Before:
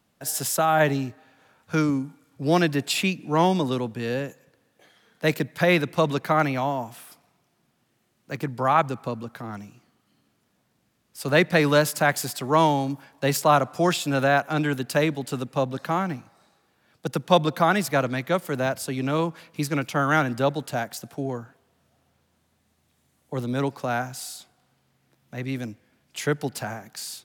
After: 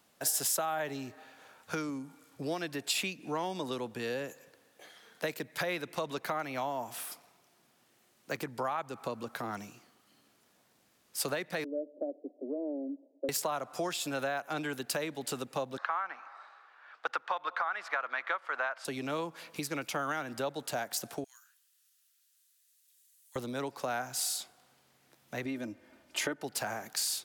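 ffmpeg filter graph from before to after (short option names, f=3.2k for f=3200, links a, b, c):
-filter_complex "[0:a]asettb=1/sr,asplit=3[a][b][c];[a]atrim=end=11.644[d];[b]atrim=start=11.64:end=13.29,asetpts=PTS-STARTPTS,afade=t=in:d=0.004:c=qsin,afade=t=out:st=1.646:d=0.004:c=qsin,equalizer=f=450:w=1.9:g=-8.5,volume=16dB,asoftclip=hard,volume=-16dB,asuperpass=centerf=390:order=12:qfactor=1.1[e];[c]atrim=start=13.286[f];[d][e]acrossfade=d=0.004:c1=hsin:c2=qsin[g];[g][f]acrossfade=d=0.004:c1=qsin:c2=hsin,asettb=1/sr,asplit=3[h][i][j];[h]atrim=end=15.784[k];[i]atrim=start=15.78:end=18.85,asetpts=PTS-STARTPTS,afade=t=in:d=0.004:c=qsin,afade=t=out:st=3.066:d=0.004:c=qsin,highpass=760,lowpass=2.9k,equalizer=f=1.3k:w=1:g=12.5[l];[j]atrim=start=18.846[m];[k][l]acrossfade=d=0.004:c1=hsin:c2=qsin[n];[n][m]acrossfade=d=0.004:c1=qsin:c2=hsin,asettb=1/sr,asplit=3[o][p][q];[o]atrim=end=21.244[r];[p]atrim=start=21.24:end=23.36,asetpts=PTS-STARTPTS,afade=t=in:d=0.004:c=qsin,afade=t=out:st=2.116:d=0.004:c=qsin,highpass=f=1.4k:w=0.5412,highpass=f=1.4k:w=1.3066,aderivative,bandreject=f=2.2k:w=15[s];[q]atrim=start=23.356[t];[r][s]acrossfade=d=0.004:c1=hsin:c2=qsin[u];[u][t]acrossfade=d=0.004:c1=qsin:c2=hsin,asettb=1/sr,asplit=3[v][w][x];[v]atrim=end=25.454[y];[w]atrim=start=25.45:end=26.44,asetpts=PTS-STARTPTS,afade=t=in:d=0.004:c=qsin,afade=t=out:st=0.986:d=0.004:c=qsin,highshelf=f=2.4k:g=-11.5,aecho=1:1:3.3:0.59,atrim=end_sample=43659,acontrast=29[z];[x]atrim=start=26.436[aa];[y][z]acrossfade=d=0.004:c1=hsin:c2=qsin[ab];[ab][aa]acrossfade=d=0.004:c1=qsin:c2=hsin,alimiter=limit=-12dB:level=0:latency=1:release=392,acompressor=threshold=-33dB:ratio=6,bass=f=250:g=-11,treble=f=4k:g=3,volume=2.5dB"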